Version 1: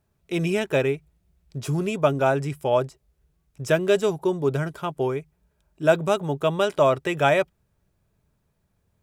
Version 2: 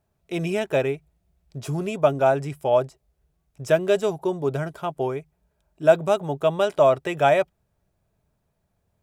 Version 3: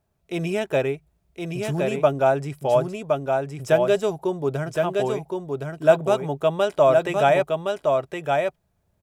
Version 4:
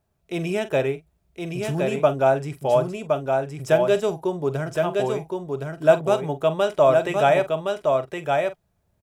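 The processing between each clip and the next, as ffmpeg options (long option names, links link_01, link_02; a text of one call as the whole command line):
ffmpeg -i in.wav -af "equalizer=frequency=690:width=2.3:gain=6.5,volume=-2.5dB" out.wav
ffmpeg -i in.wav -af "aecho=1:1:1066:0.631" out.wav
ffmpeg -i in.wav -filter_complex "[0:a]asplit=2[link_01][link_02];[link_02]adelay=45,volume=-13.5dB[link_03];[link_01][link_03]amix=inputs=2:normalize=0" out.wav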